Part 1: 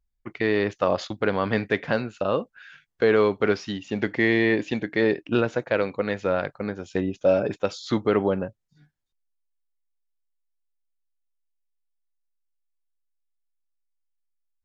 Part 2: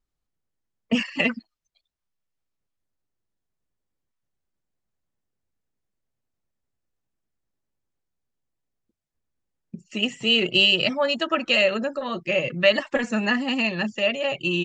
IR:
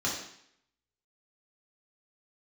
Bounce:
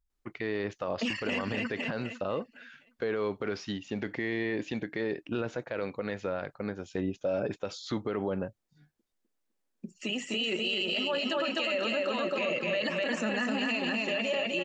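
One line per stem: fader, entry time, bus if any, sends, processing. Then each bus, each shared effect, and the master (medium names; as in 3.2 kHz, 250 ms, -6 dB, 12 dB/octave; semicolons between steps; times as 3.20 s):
-4.5 dB, 0.00 s, no send, no echo send, none
-0.5 dB, 0.10 s, no send, echo send -3 dB, peak limiter -15 dBFS, peak gain reduction 9 dB; high-pass 210 Hz 24 dB/octave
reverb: none
echo: feedback delay 253 ms, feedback 43%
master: peak limiter -22 dBFS, peak gain reduction 11 dB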